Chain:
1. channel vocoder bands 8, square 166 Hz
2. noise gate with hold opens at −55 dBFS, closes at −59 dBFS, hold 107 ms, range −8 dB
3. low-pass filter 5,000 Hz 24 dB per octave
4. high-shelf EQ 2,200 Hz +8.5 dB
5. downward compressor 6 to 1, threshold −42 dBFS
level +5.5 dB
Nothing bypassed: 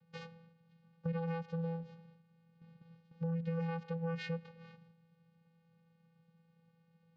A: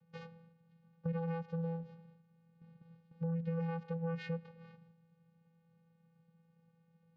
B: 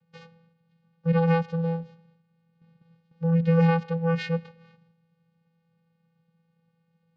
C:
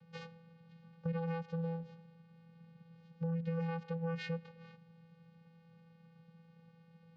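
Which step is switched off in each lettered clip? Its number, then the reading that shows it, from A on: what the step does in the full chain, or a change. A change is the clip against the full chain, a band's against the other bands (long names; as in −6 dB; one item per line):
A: 4, 2 kHz band −3.0 dB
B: 5, average gain reduction 10.0 dB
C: 2, change in momentary loudness spread +4 LU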